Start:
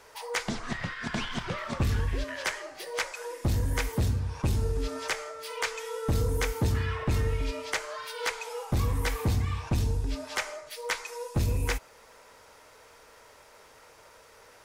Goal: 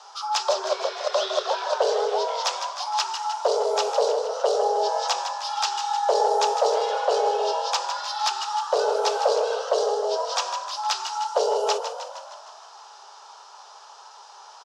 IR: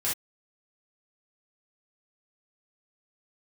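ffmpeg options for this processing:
-filter_complex "[0:a]firequalizer=gain_entry='entry(110,0);entry(190,11);entry(740,9);entry(1700,-12);entry(2700,5);entry(4700,12);entry(14000,-30)':delay=0.05:min_phase=1,acontrast=88,asplit=8[link_01][link_02][link_03][link_04][link_05][link_06][link_07][link_08];[link_02]adelay=155,afreqshift=42,volume=-9dB[link_09];[link_03]adelay=310,afreqshift=84,volume=-13.4dB[link_10];[link_04]adelay=465,afreqshift=126,volume=-17.9dB[link_11];[link_05]adelay=620,afreqshift=168,volume=-22.3dB[link_12];[link_06]adelay=775,afreqshift=210,volume=-26.7dB[link_13];[link_07]adelay=930,afreqshift=252,volume=-31.2dB[link_14];[link_08]adelay=1085,afreqshift=294,volume=-35.6dB[link_15];[link_01][link_09][link_10][link_11][link_12][link_13][link_14][link_15]amix=inputs=8:normalize=0,afreqshift=370,volume=-6.5dB"

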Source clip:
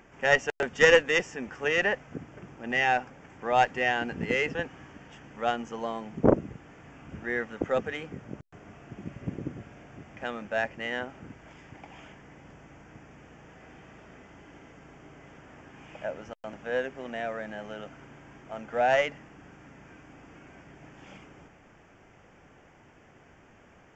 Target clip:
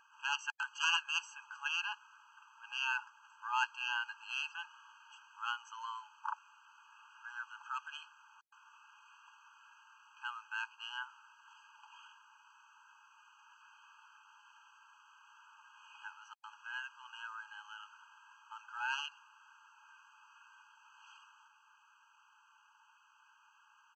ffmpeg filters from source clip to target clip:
ffmpeg -i in.wav -af "aresample=32000,aresample=44100,aeval=exprs='0.708*(cos(1*acos(clip(val(0)/0.708,-1,1)))-cos(1*PI/2))+0.00501*(cos(8*acos(clip(val(0)/0.708,-1,1)))-cos(8*PI/2))':channel_layout=same,afftfilt=real='re*eq(mod(floor(b*sr/1024/820),2),1)':imag='im*eq(mod(floor(b*sr/1024/820),2),1)':win_size=1024:overlap=0.75,volume=-3dB" out.wav

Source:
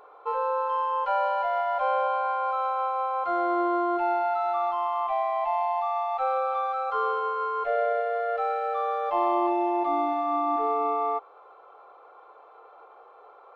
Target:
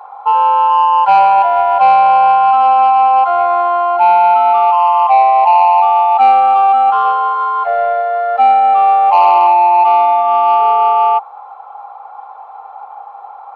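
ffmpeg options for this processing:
ffmpeg -i in.wav -af "highpass=frequency=820:width_type=q:width=10,acontrast=75" out.wav

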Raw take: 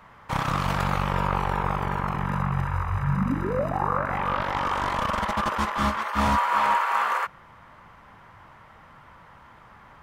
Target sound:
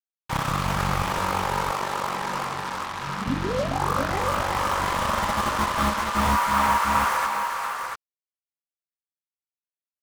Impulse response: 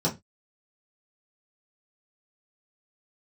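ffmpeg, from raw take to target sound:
-filter_complex "[0:a]asettb=1/sr,asplit=3[link_01][link_02][link_03];[link_01]atrim=end=1.024[link_04];[link_02]atrim=start=1.02:end=3.27,asetpts=PTS-STARTPTS,afade=type=in:duration=0.004:curve=qsin,afade=type=out:start_time=2.246:duration=0.004:curve=qsin,highpass=290[link_05];[link_03]atrim=start=3.266[link_06];[link_04][link_05]acrossfade=duration=0.004:curve1=hsin:curve2=qsin[link_07];[link_07][link_06]acrossfade=duration=0.004:curve1=qsin:curve2=hsin,acrusher=bits=4:mix=0:aa=0.5,aecho=1:1:411|690:0.398|0.501"

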